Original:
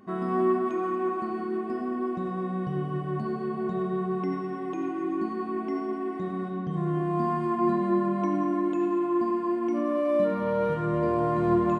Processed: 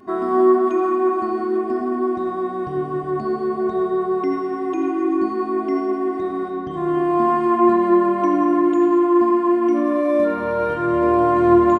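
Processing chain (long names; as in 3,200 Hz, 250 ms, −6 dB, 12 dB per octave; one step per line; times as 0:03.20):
comb filter 2.9 ms, depth 96%
level +4.5 dB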